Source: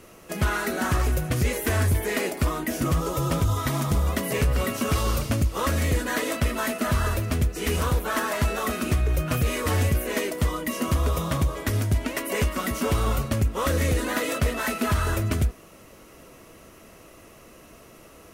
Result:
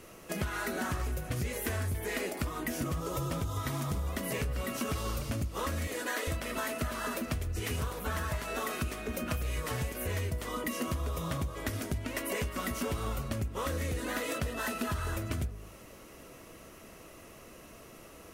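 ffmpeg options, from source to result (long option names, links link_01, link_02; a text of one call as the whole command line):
ffmpeg -i in.wav -filter_complex "[0:a]asettb=1/sr,asplit=3[link_01][link_02][link_03];[link_01]atrim=end=5.874[link_04];[link_02]atrim=start=5.87:end=10.64,asetpts=PTS-STARTPTS,afade=type=in:duration=0.004:curve=qsin,afade=type=out:start_time=4.766:duration=0.004:curve=qsin,acrossover=split=270[link_05][link_06];[link_05]adelay=400[link_07];[link_07][link_06]amix=inputs=2:normalize=0,atrim=end_sample=210357[link_08];[link_03]atrim=start=10.636[link_09];[link_04][link_08]acrossfade=duration=0.004:curve1=hsin:curve2=qsin[link_10];[link_10][link_09]acrossfade=duration=0.004:curve1=qsin:curve2=hsin,asettb=1/sr,asplit=3[link_11][link_12][link_13];[link_11]atrim=end=14.424[link_14];[link_12]atrim=start=14.42:end=14.98,asetpts=PTS-STARTPTS,afade=type=in:duration=0.004:curve=qsin,afade=type=out:start_time=0.556:duration=0.004:curve=qsin,bandreject=frequency=2200:width=8.3[link_15];[link_13]atrim=start=14.976[link_16];[link_14][link_15]acrossfade=duration=0.004:curve1=hsin:curve2=qsin[link_17];[link_17][link_16]acrossfade=duration=0.004:curve1=qsin:curve2=hsin,bandreject=frequency=52.01:width_type=h:width=4,bandreject=frequency=104.02:width_type=h:width=4,bandreject=frequency=156.03:width_type=h:width=4,bandreject=frequency=208.04:width_type=h:width=4,bandreject=frequency=260.05:width_type=h:width=4,bandreject=frequency=312.06:width_type=h:width=4,bandreject=frequency=364.07:width_type=h:width=4,bandreject=frequency=416.08:width_type=h:width=4,bandreject=frequency=468.09:width_type=h:width=4,bandreject=frequency=520.1:width_type=h:width=4,bandreject=frequency=572.11:width_type=h:width=4,bandreject=frequency=624.12:width_type=h:width=4,bandreject=frequency=676.13:width_type=h:width=4,bandreject=frequency=728.14:width_type=h:width=4,bandreject=frequency=780.15:width_type=h:width=4,bandreject=frequency=832.16:width_type=h:width=4,bandreject=frequency=884.17:width_type=h:width=4,bandreject=frequency=936.18:width_type=h:width=4,bandreject=frequency=988.19:width_type=h:width=4,bandreject=frequency=1040.2:width_type=h:width=4,bandreject=frequency=1092.21:width_type=h:width=4,bandreject=frequency=1144.22:width_type=h:width=4,bandreject=frequency=1196.23:width_type=h:width=4,bandreject=frequency=1248.24:width_type=h:width=4,bandreject=frequency=1300.25:width_type=h:width=4,bandreject=frequency=1352.26:width_type=h:width=4,bandreject=frequency=1404.27:width_type=h:width=4,bandreject=frequency=1456.28:width_type=h:width=4,bandreject=frequency=1508.29:width_type=h:width=4,acompressor=threshold=-29dB:ratio=6,volume=-2dB" out.wav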